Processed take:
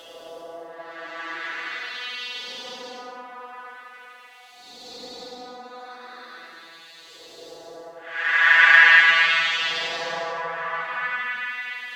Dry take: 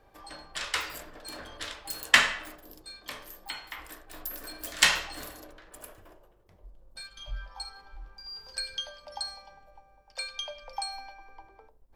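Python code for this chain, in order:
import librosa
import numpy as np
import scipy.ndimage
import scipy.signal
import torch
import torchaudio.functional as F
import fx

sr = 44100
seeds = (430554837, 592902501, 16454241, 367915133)

p1 = fx.vocoder_arp(x, sr, chord='bare fifth', root=52, every_ms=329)
p2 = scipy.signal.sosfilt(scipy.signal.butter(2, 150.0, 'highpass', fs=sr, output='sos'), p1)
p3 = fx.rider(p2, sr, range_db=5, speed_s=0.5)
p4 = p2 + (p3 * 10.0 ** (-3.0 / 20.0))
p5 = fx.dmg_noise_colour(p4, sr, seeds[0], colour='blue', level_db=-49.0)
p6 = fx.filter_lfo_bandpass(p5, sr, shape='saw_up', hz=5.8, low_hz=490.0, high_hz=5400.0, q=2.0)
p7 = fx.paulstretch(p6, sr, seeds[1], factor=14.0, window_s=0.1, from_s=1.53)
y = p7 * 10.0 ** (4.5 / 20.0)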